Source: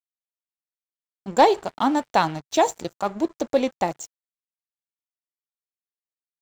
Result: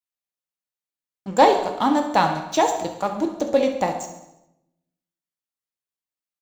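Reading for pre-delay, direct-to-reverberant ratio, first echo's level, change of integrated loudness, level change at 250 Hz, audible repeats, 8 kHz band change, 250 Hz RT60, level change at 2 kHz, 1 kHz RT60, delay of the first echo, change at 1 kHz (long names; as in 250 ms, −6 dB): 3 ms, 3.5 dB, −12.5 dB, +2.0 dB, +1.5 dB, 5, +1.0 dB, 1.1 s, +1.5 dB, 0.80 s, 68 ms, +2.0 dB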